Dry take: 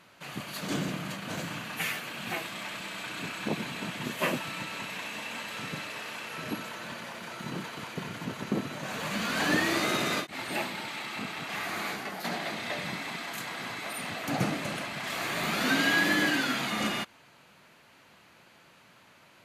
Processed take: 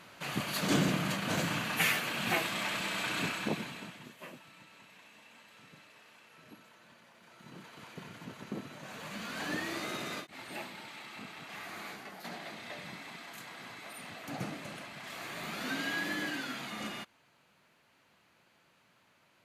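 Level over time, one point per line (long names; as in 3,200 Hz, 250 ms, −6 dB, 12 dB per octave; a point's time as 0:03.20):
0:03.22 +3.5 dB
0:03.79 −8 dB
0:04.19 −19.5 dB
0:07.12 −19.5 dB
0:07.89 −10 dB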